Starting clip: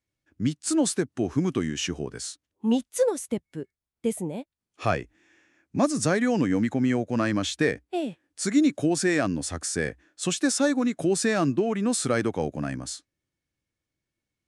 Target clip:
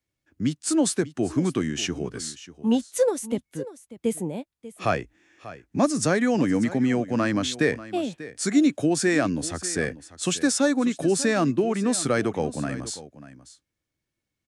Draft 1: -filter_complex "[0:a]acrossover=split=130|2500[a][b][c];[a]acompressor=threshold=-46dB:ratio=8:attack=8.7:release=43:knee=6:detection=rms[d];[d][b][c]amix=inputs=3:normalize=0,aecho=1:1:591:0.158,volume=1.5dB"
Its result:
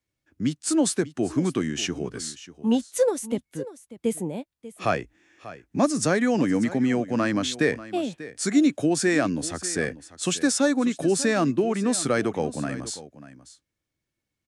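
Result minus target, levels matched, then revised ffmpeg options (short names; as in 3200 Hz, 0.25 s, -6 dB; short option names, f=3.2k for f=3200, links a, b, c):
compressor: peak gain reduction +6.5 dB
-filter_complex "[0:a]acrossover=split=130|2500[a][b][c];[a]acompressor=threshold=-38.5dB:ratio=8:attack=8.7:release=43:knee=6:detection=rms[d];[d][b][c]amix=inputs=3:normalize=0,aecho=1:1:591:0.158,volume=1.5dB"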